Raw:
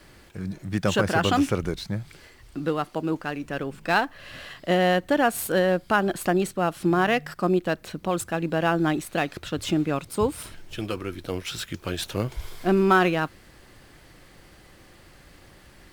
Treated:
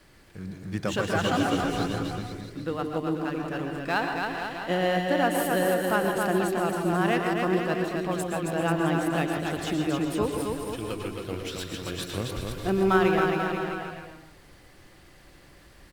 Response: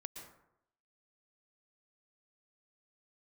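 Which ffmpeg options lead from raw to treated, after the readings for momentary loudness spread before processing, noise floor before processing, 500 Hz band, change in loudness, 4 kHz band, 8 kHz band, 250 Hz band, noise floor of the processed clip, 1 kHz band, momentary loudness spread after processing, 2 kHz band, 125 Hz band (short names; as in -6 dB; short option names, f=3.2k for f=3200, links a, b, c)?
12 LU, -52 dBFS, -1.5 dB, -2.0 dB, -2.0 dB, -2.0 dB, -1.5 dB, -53 dBFS, -2.0 dB, 10 LU, -2.0 dB, -1.5 dB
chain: -filter_complex "[0:a]aecho=1:1:270|486|658.8|797|907.6:0.631|0.398|0.251|0.158|0.1[a];[1:a]atrim=start_sample=2205,afade=t=out:st=0.22:d=0.01,atrim=end_sample=10143[b];[a][b]afir=irnorm=-1:irlink=0"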